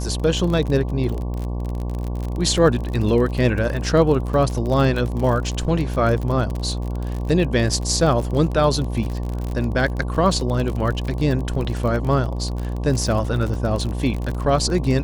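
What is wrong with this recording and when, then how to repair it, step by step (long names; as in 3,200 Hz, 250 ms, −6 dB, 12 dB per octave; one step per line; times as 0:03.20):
mains buzz 60 Hz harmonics 19 −25 dBFS
surface crackle 39 per second −25 dBFS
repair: click removal
hum removal 60 Hz, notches 19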